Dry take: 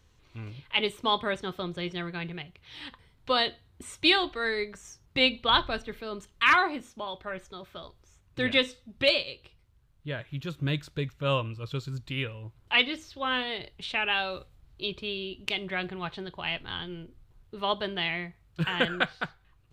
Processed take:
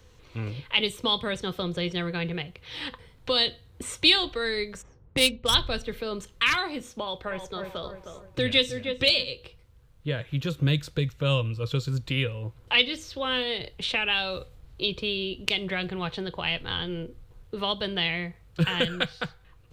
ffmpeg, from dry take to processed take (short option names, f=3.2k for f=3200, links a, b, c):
-filter_complex "[0:a]asplit=3[a][b][c];[a]afade=t=out:st=4.81:d=0.02[d];[b]adynamicsmooth=sensitivity=2:basefreq=1.2k,afade=t=in:st=4.81:d=0.02,afade=t=out:st=5.53:d=0.02[e];[c]afade=t=in:st=5.53:d=0.02[f];[d][e][f]amix=inputs=3:normalize=0,asettb=1/sr,asplit=3[g][h][i];[g]atrim=end=7.004[j];[h]atrim=start=7:end=9.32,asetpts=PTS-STARTPTS,afade=t=in:d=0.004:c=qsin,afade=t=out:st=2.316:d=0.004:c=qsin,asplit=2[k][l];[l]adelay=310,lowpass=f=1.6k:p=1,volume=-8.5dB,asplit=2[m][n];[n]adelay=310,lowpass=f=1.6k:p=1,volume=0.39,asplit=2[o][p];[p]adelay=310,lowpass=f=1.6k:p=1,volume=0.39,asplit=2[q][r];[r]adelay=310,lowpass=f=1.6k:p=1,volume=0.39[s];[k][m][o][q][s]amix=inputs=5:normalize=0,atrim=end_sample=102312[t];[i]atrim=start=9.316[u];[j][t]acrossfade=d=0.004:c1=hsin:c2=qsin[v];[v][u]acrossfade=d=0.004:c1=qsin:c2=hsin,equalizer=f=490:t=o:w=0.21:g=11,acrossover=split=190|3000[w][x][y];[x]acompressor=threshold=-39dB:ratio=3[z];[w][z][y]amix=inputs=3:normalize=0,volume=7.5dB"